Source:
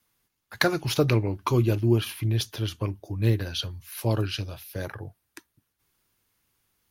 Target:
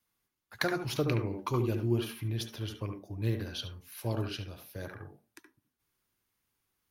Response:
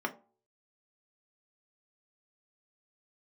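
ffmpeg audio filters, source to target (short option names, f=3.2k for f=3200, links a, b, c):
-filter_complex "[0:a]asplit=2[a][b];[1:a]atrim=start_sample=2205,adelay=71[c];[b][c]afir=irnorm=-1:irlink=0,volume=-10.5dB[d];[a][d]amix=inputs=2:normalize=0,volume=-8.5dB"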